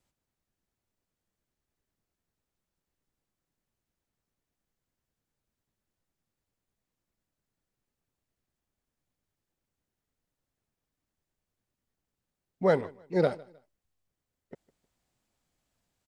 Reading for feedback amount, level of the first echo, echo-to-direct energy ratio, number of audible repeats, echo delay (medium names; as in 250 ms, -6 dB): 31%, -23.0 dB, -22.5 dB, 2, 155 ms